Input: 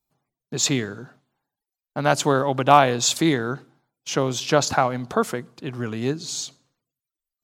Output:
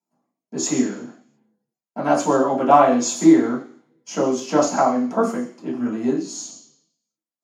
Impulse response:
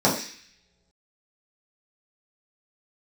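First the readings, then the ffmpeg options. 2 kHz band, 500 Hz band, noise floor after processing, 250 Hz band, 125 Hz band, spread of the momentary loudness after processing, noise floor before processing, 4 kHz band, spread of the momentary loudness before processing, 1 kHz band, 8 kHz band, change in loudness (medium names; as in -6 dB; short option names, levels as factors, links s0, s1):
-5.0 dB, +3.0 dB, under -85 dBFS, +7.0 dB, -7.5 dB, 17 LU, under -85 dBFS, -8.5 dB, 18 LU, +1.5 dB, -1.5 dB, +2.5 dB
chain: -filter_complex "[0:a]highpass=f=170:w=0.5412,highpass=f=170:w=1.3066[s0];[1:a]atrim=start_sample=2205,asetrate=52920,aresample=44100[s1];[s0][s1]afir=irnorm=-1:irlink=0,volume=0.126"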